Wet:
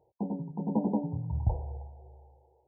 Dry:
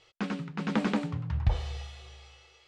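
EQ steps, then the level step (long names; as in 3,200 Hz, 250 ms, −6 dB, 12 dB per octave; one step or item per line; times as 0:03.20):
high-pass filter 62 Hz
linear-phase brick-wall low-pass 1,000 Hz
0.0 dB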